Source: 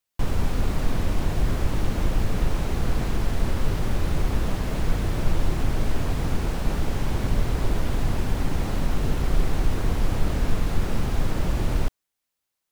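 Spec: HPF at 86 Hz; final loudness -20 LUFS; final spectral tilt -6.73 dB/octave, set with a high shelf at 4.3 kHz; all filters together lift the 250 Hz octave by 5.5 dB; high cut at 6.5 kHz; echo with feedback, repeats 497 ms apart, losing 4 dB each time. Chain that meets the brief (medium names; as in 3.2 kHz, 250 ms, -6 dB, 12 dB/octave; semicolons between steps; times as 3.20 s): high-pass 86 Hz; low-pass 6.5 kHz; peaking EQ 250 Hz +7.5 dB; treble shelf 4.3 kHz -4 dB; feedback delay 497 ms, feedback 63%, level -4 dB; trim +5.5 dB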